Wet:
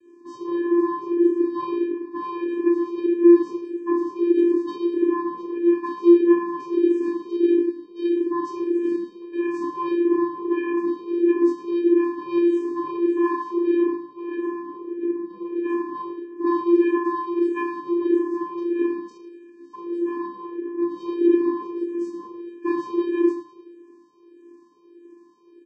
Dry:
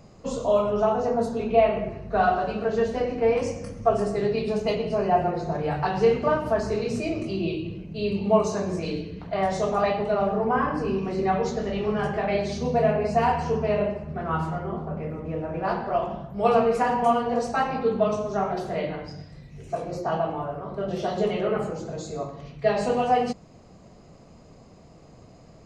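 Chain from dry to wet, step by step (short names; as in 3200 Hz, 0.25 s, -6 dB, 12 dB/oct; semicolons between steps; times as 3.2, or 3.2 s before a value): high shelf 5300 Hz -6 dB; on a send: feedback echo 0.105 s, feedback 57%, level -13.5 dB; on the sum: shoebox room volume 420 m³, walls furnished, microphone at 2.9 m; in parallel at -2.5 dB: limiter -9 dBFS, peak gain reduction 7.5 dB; on the sum: vocoder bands 8, square 345 Hz; endless phaser -1.6 Hz; gain -2.5 dB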